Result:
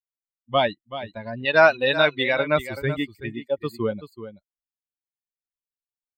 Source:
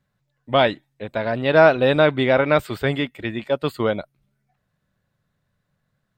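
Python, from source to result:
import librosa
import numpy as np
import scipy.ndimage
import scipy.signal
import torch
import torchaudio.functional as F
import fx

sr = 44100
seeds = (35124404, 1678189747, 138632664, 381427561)

y = fx.bin_expand(x, sr, power=2.0)
y = fx.tilt_shelf(y, sr, db=-8.0, hz=800.0, at=(1.45, 2.39))
y = y + 10.0 ** (-12.5 / 20.0) * np.pad(y, (int(380 * sr / 1000.0), 0))[:len(y)]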